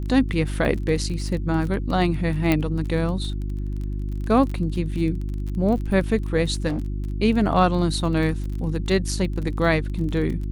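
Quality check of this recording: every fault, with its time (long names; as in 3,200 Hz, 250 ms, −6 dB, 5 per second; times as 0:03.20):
surface crackle 28 per second −30 dBFS
mains hum 50 Hz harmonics 7 −27 dBFS
0:00.65: drop-out 2.5 ms
0:02.52: click −8 dBFS
0:06.67–0:06.86: clipping −21.5 dBFS
0:09.48: drop-out 2.6 ms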